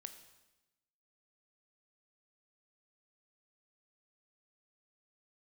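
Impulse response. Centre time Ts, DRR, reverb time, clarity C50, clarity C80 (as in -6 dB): 13 ms, 8.0 dB, 1.0 s, 10.5 dB, 12.0 dB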